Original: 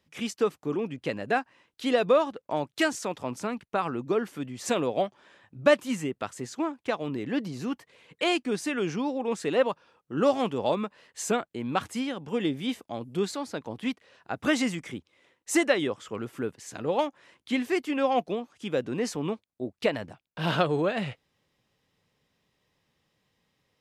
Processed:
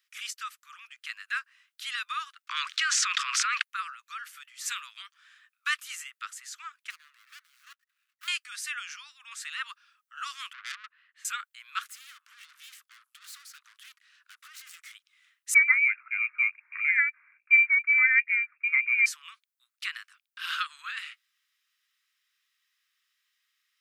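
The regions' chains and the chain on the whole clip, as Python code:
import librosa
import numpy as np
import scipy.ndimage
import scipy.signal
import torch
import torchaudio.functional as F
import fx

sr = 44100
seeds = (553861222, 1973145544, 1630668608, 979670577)

y = fx.chain(x, sr, fx.steep_highpass(hz=1000.0, slope=96),
    fx.air_absorb(metres=130.0),
    fx.env_flatten(amount_pct=100), at=(2.47, 3.62))
y = fx.chain(y, sr, fx.median_filter(points=41),
    fx.level_steps(step_db=10), at=(6.9, 8.28))
y = fx.chain(y, sr, fx.highpass(hz=460.0, slope=6),
    fx.air_absorb(metres=500.0),
    fx.transformer_sat(knee_hz=3500.0), at=(10.53, 11.25))
y = fx.chain(y, sr, fx.hum_notches(base_hz=50, count=8),
    fx.over_compress(threshold_db=-29.0, ratio=-0.5),
    fx.tube_stage(drive_db=42.0, bias=0.7), at=(11.83, 14.94))
y = fx.chain(y, sr, fx.small_body(hz=(240.0, 1700.0), ring_ms=25, db=9),
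    fx.freq_invert(carrier_hz=2600), at=(15.54, 19.06))
y = scipy.signal.sosfilt(scipy.signal.butter(12, 1200.0, 'highpass', fs=sr, output='sos'), y)
y = fx.high_shelf(y, sr, hz=11000.0, db=8.5)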